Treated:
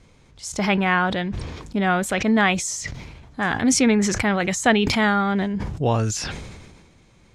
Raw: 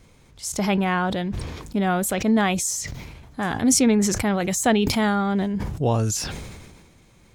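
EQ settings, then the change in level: low-pass 7.5 kHz 12 dB/octave; dynamic bell 1.9 kHz, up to +7 dB, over -39 dBFS, Q 0.85; 0.0 dB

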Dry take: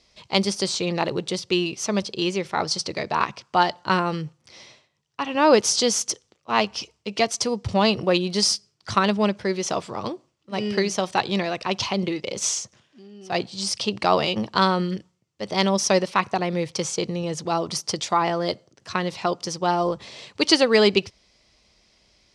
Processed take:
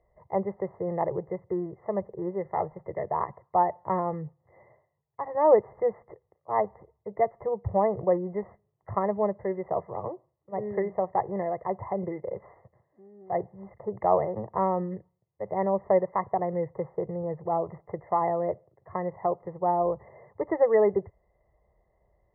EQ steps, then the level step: brick-wall FIR low-pass 2.1 kHz; distance through air 250 m; static phaser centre 620 Hz, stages 4; 0.0 dB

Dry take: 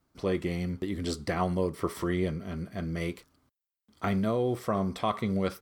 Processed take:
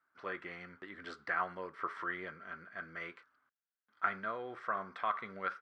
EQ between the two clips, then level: band-pass filter 1.5 kHz, Q 4.7; distance through air 72 m; +8.0 dB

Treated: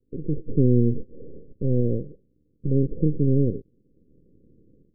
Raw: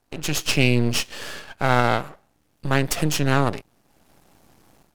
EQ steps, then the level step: steep low-pass 510 Hz 96 dB/octave; +1.5 dB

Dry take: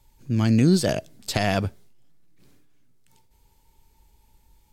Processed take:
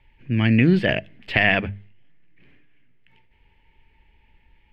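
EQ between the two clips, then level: distance through air 410 m; high-order bell 2.3 kHz +15.5 dB 1.1 oct; hum notches 50/100/150/200 Hz; +2.0 dB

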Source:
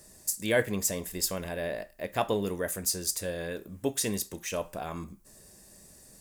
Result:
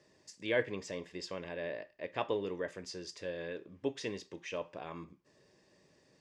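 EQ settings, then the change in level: cabinet simulation 160–4400 Hz, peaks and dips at 210 Hz -10 dB, 710 Hz -7 dB, 1.4 kHz -6 dB, 4 kHz -6 dB; -3.5 dB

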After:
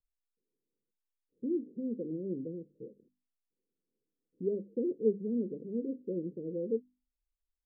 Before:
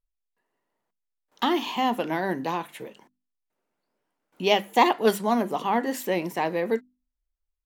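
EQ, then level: steep low-pass 510 Hz 96 dB/octave; -6.5 dB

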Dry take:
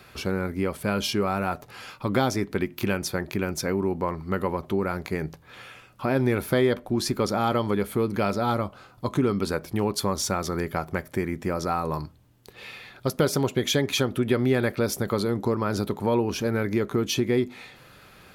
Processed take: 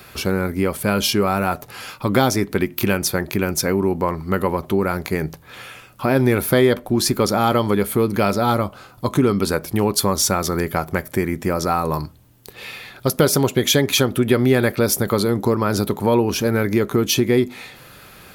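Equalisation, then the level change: treble shelf 9.4 kHz +11 dB; +6.5 dB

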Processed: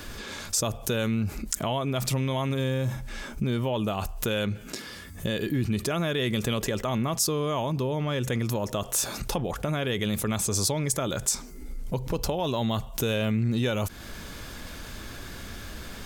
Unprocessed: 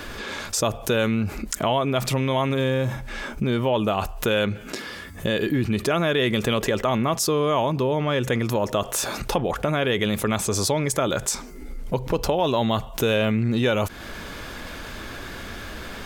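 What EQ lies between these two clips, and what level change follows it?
tone controls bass +6 dB, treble +8 dB; -7.5 dB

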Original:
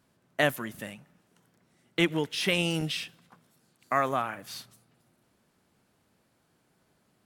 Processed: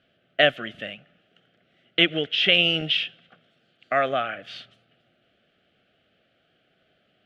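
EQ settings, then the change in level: Chebyshev band-stop 650–1400 Hz, order 2; resonant low-pass 3.1 kHz, resonance Q 5.4; peaking EQ 850 Hz +13 dB 1.3 oct; -1.0 dB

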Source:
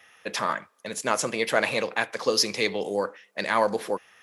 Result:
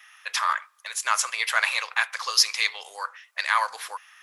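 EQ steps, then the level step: Chebyshev high-pass 1.1 kHz, order 3; +4.5 dB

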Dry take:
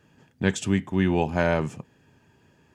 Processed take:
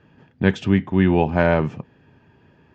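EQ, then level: low-pass 7.7 kHz; distance through air 220 m; +6.0 dB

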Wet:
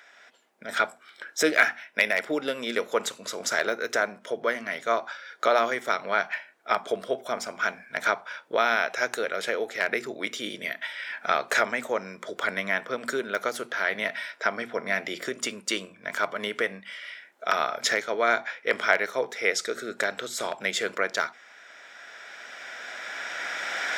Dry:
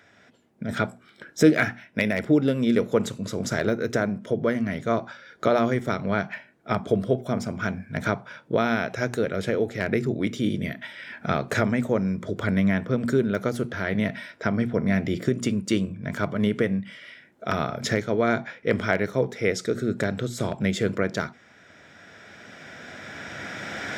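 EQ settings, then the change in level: high-pass 750 Hz 12 dB/octave; +4.5 dB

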